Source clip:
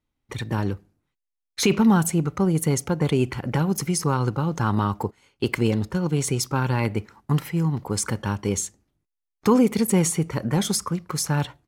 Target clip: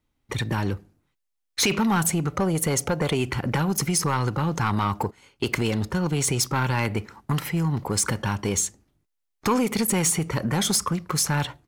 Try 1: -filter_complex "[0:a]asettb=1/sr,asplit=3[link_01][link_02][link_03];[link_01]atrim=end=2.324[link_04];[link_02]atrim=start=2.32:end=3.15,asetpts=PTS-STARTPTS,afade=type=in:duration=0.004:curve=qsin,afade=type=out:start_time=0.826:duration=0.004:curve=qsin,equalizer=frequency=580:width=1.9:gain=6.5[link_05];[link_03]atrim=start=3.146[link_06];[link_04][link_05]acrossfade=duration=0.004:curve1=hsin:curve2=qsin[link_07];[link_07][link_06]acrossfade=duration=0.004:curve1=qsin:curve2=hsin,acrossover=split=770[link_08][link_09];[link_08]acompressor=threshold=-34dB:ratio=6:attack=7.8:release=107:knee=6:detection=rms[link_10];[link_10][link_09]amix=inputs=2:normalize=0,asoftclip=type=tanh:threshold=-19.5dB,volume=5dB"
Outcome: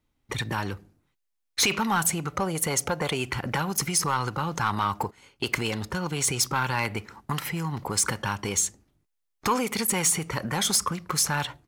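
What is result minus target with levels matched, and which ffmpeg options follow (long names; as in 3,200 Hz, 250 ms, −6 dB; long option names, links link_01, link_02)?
downward compressor: peak gain reduction +8 dB
-filter_complex "[0:a]asettb=1/sr,asplit=3[link_01][link_02][link_03];[link_01]atrim=end=2.324[link_04];[link_02]atrim=start=2.32:end=3.15,asetpts=PTS-STARTPTS,afade=type=in:duration=0.004:curve=qsin,afade=type=out:start_time=0.826:duration=0.004:curve=qsin,equalizer=frequency=580:width=1.9:gain=6.5[link_05];[link_03]atrim=start=3.146[link_06];[link_04][link_05]acrossfade=duration=0.004:curve1=hsin:curve2=qsin[link_07];[link_07][link_06]acrossfade=duration=0.004:curve1=qsin:curve2=hsin,acrossover=split=770[link_08][link_09];[link_08]acompressor=threshold=-24.5dB:ratio=6:attack=7.8:release=107:knee=6:detection=rms[link_10];[link_10][link_09]amix=inputs=2:normalize=0,asoftclip=type=tanh:threshold=-19.5dB,volume=5dB"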